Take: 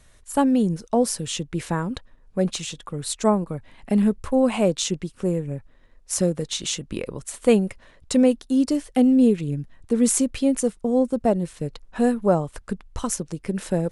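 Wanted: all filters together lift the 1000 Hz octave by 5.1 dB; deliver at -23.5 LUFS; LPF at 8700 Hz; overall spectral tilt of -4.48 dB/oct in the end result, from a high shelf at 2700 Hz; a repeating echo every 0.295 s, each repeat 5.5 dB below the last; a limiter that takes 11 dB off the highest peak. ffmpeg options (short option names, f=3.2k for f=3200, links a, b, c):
-af "lowpass=8.7k,equalizer=f=1k:t=o:g=6,highshelf=f=2.7k:g=7,alimiter=limit=-13dB:level=0:latency=1,aecho=1:1:295|590|885|1180|1475|1770|2065:0.531|0.281|0.149|0.079|0.0419|0.0222|0.0118"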